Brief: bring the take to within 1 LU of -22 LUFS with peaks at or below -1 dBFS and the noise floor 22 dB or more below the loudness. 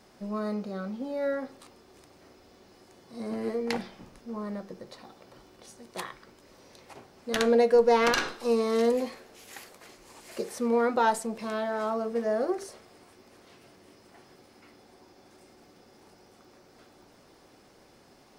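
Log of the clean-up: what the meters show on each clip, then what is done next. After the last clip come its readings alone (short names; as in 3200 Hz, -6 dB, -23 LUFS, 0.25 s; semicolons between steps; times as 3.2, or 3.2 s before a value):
ticks 25/s; loudness -28.0 LUFS; peak -11.0 dBFS; loudness target -22.0 LUFS
-> de-click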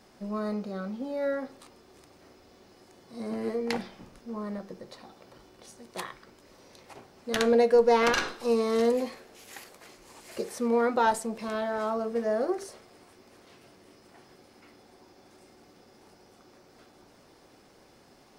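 ticks 0/s; loudness -28.0 LUFS; peak -11.0 dBFS; loudness target -22.0 LUFS
-> gain +6 dB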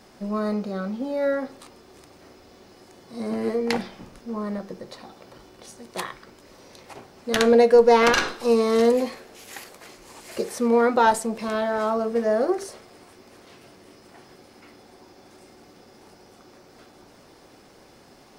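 loudness -22.0 LUFS; peak -5.0 dBFS; noise floor -52 dBFS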